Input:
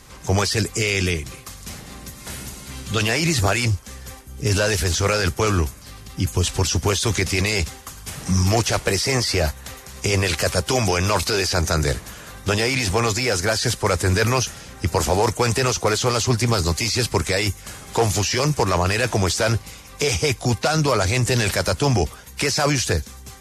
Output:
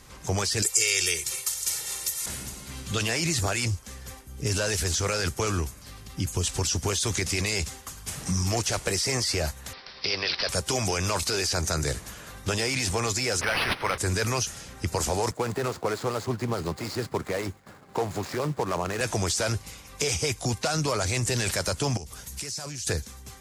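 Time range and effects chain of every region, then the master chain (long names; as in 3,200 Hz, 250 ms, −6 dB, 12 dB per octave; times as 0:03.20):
0:00.62–0:02.26: spectral tilt +3.5 dB per octave + notch filter 260 Hz, Q 5.9 + comb filter 2.2 ms, depth 92%
0:09.73–0:10.49: high-pass filter 590 Hz 6 dB per octave + parametric band 4,400 Hz +5 dB 0.72 octaves + bad sample-rate conversion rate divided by 4×, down none, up filtered
0:13.41–0:13.98: tilt shelving filter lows −9 dB, about 690 Hz + linearly interpolated sample-rate reduction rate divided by 6×
0:15.31–0:19.01: running median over 15 samples + downward expander −37 dBFS + high-pass filter 140 Hz
0:21.97–0:22.87: bass and treble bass +6 dB, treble +10 dB + downward compressor 16 to 1, threshold −29 dBFS + highs frequency-modulated by the lows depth 0.19 ms
whole clip: dynamic equaliser 7,800 Hz, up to +6 dB, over −40 dBFS, Q 0.92; downward compressor 2 to 1, threshold −21 dBFS; level −4.5 dB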